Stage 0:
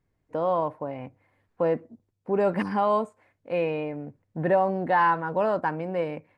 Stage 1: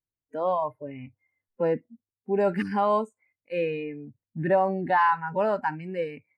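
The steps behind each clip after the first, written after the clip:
noise reduction from a noise print of the clip's start 24 dB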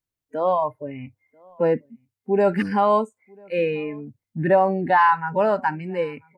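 slap from a distant wall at 170 metres, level −28 dB
level +5 dB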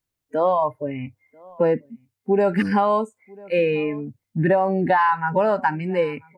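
downward compressor, threshold −20 dBFS, peak gain reduction 8 dB
level +5 dB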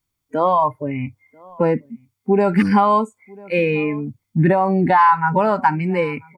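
comb filter 0.9 ms, depth 40%
level +4 dB

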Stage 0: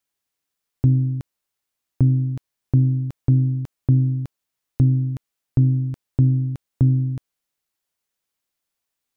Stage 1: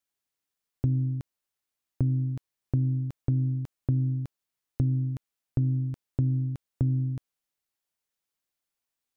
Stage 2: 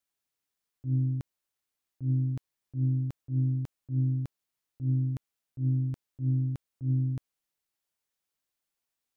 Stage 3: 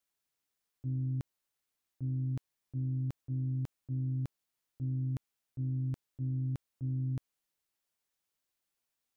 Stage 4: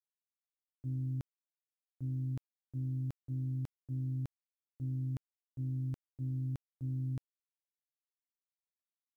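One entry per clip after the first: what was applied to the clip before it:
downward compressor, threshold −16 dBFS, peak gain reduction 4.5 dB; level −5.5 dB
volume swells 104 ms
brickwall limiter −29.5 dBFS, peak gain reduction 9 dB
bit reduction 12 bits; level −2.5 dB

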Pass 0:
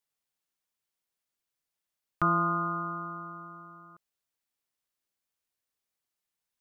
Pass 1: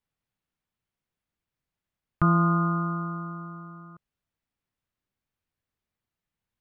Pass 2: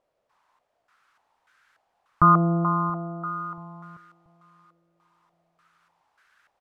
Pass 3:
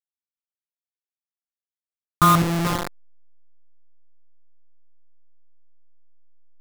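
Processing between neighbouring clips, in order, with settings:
bass and treble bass +13 dB, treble −12 dB; in parallel at −1.5 dB: brickwall limiter −17.5 dBFS, peak gain reduction 7.5 dB; on the sum: level −3 dB
background noise violet −42 dBFS; repeating echo 681 ms, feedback 46%, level −24 dB; low-pass on a step sequencer 3.4 Hz 580–1,500 Hz
hold until the input has moved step −17.5 dBFS; level +1.5 dB

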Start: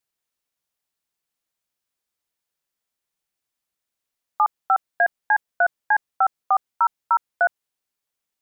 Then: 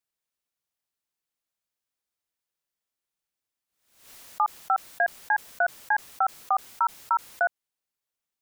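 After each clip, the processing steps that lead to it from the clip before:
background raised ahead of every attack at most 90 dB per second
level −5 dB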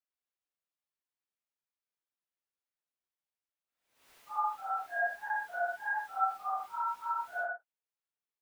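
random phases in long frames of 200 ms
bass and treble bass −6 dB, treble −9 dB
level −7 dB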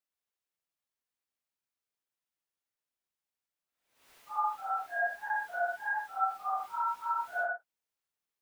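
speech leveller 0.5 s
level +1.5 dB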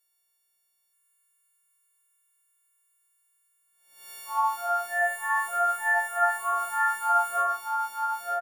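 every partial snapped to a pitch grid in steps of 4 semitones
single-tap delay 930 ms −3.5 dB
level +5 dB

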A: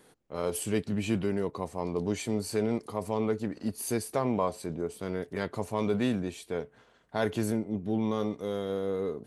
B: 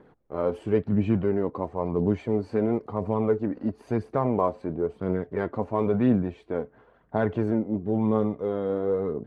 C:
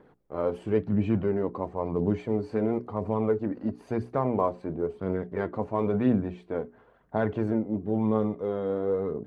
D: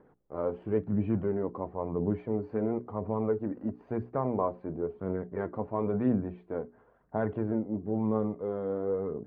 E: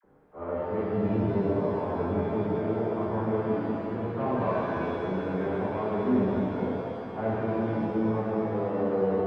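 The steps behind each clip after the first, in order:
low-pass filter 1,300 Hz 12 dB per octave; phase shifter 0.98 Hz, delay 4.1 ms, feedback 36%; level +5 dB
mains-hum notches 60/120/180/240/300/360/420 Hz; level −1.5 dB
low-pass filter 1,700 Hz 12 dB per octave; level −3.5 dB
all-pass dispersion lows, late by 44 ms, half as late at 770 Hz; harmonic generator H 5 −23 dB, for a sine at −17 dBFS; reverb with rising layers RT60 3 s, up +7 semitones, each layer −8 dB, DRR −8 dB; level −6.5 dB

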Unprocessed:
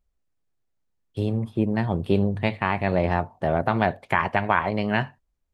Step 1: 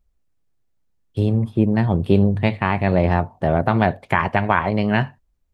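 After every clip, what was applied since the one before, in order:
low-shelf EQ 290 Hz +5.5 dB
level +2.5 dB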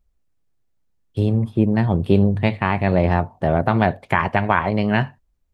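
no processing that can be heard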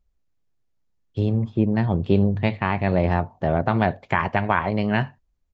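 downsampling to 16,000 Hz
level −3 dB

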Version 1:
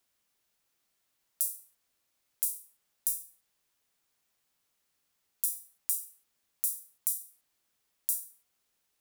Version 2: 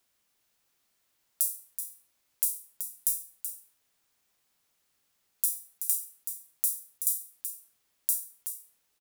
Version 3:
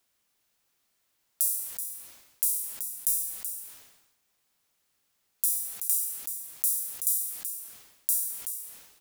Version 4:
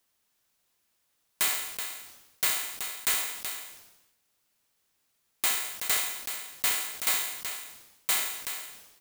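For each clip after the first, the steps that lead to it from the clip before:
single-tap delay 378 ms −9 dB; level +3 dB
level that may fall only so fast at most 59 dB per second
samples in bit-reversed order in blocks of 32 samples; wrap-around overflow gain 11.5 dB

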